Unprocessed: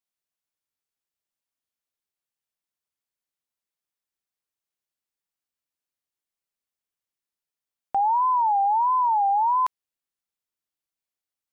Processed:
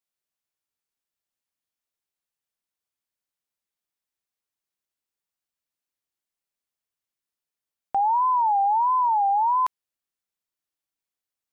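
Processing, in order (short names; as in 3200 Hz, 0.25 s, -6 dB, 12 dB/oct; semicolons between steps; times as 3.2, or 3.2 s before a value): 8.13–9.08 tone controls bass +15 dB, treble +7 dB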